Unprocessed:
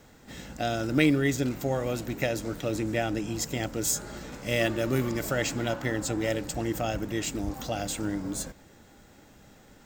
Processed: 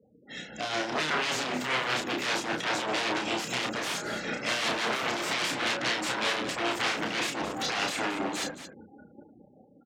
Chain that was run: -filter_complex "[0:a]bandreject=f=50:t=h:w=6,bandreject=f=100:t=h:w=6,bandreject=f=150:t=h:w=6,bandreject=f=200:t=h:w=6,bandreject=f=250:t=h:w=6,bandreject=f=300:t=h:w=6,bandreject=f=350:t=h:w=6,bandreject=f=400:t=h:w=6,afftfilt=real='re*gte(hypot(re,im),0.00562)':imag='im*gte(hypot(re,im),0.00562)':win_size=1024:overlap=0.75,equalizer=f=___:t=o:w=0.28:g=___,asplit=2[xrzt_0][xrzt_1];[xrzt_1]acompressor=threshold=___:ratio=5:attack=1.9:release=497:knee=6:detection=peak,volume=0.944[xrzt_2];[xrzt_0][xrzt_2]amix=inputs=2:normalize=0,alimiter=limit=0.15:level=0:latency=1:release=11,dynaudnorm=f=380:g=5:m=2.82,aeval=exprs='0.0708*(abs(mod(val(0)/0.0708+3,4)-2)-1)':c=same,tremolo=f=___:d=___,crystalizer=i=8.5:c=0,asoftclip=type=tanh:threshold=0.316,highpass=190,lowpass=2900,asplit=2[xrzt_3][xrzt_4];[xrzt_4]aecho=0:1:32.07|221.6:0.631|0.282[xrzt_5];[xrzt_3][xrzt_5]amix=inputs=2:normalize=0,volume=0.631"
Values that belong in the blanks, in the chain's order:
1000, -13.5, 0.00708, 5.1, 0.47